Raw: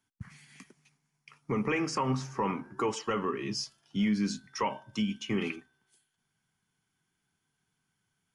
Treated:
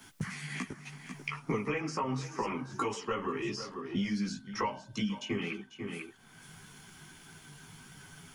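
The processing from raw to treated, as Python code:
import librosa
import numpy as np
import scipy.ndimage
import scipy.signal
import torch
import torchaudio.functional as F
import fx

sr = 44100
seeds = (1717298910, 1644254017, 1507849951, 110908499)

y = fx.chorus_voices(x, sr, voices=4, hz=0.78, base_ms=16, depth_ms=4.3, mix_pct=55)
y = y + 10.0 ** (-18.5 / 20.0) * np.pad(y, (int(492 * sr / 1000.0), 0))[:len(y)]
y = fx.band_squash(y, sr, depth_pct=100)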